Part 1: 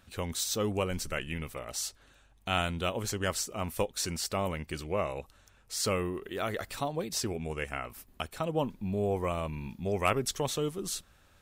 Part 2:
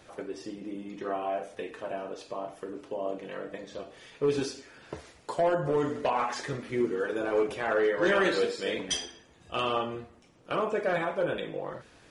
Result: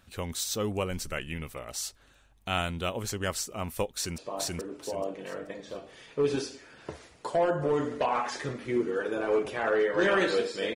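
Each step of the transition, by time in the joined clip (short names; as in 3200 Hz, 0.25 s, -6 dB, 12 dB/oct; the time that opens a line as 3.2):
part 1
3.93–4.18 echo throw 0.43 s, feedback 30%, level -0.5 dB
4.18 switch to part 2 from 2.22 s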